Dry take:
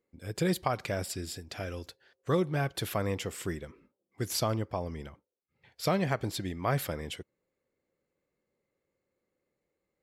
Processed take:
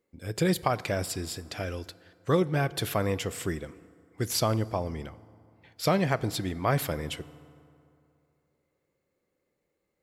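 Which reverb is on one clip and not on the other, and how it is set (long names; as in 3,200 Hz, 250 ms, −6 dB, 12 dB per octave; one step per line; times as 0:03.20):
feedback delay network reverb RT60 2.6 s, high-frequency decay 0.55×, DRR 18 dB
level +3.5 dB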